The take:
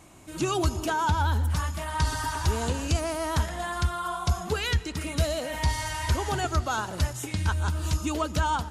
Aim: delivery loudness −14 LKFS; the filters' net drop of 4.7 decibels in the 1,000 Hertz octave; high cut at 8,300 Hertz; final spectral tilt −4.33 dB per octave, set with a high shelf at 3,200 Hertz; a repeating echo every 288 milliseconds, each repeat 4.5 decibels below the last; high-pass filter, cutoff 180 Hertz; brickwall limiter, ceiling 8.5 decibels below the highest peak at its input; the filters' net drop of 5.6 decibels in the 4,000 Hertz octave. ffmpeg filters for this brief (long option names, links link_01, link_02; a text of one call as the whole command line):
ffmpeg -i in.wav -af "highpass=180,lowpass=8300,equalizer=frequency=1000:width_type=o:gain=-5,highshelf=frequency=3200:gain=-4.5,equalizer=frequency=4000:width_type=o:gain=-3.5,alimiter=level_in=2.5dB:limit=-24dB:level=0:latency=1,volume=-2.5dB,aecho=1:1:288|576|864|1152|1440|1728|2016|2304|2592:0.596|0.357|0.214|0.129|0.0772|0.0463|0.0278|0.0167|0.01,volume=20.5dB" out.wav